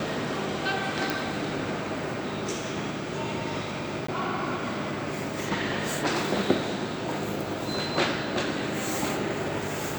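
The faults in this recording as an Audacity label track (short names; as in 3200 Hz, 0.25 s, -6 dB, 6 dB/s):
1.100000	1.100000	pop
4.070000	4.080000	gap 14 ms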